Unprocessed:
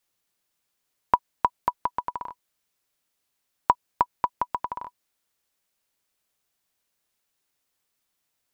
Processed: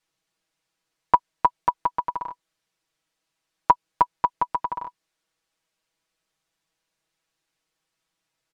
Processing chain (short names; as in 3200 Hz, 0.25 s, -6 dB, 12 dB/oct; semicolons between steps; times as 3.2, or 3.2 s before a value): air absorption 54 m; comb 6.2 ms, depth 88%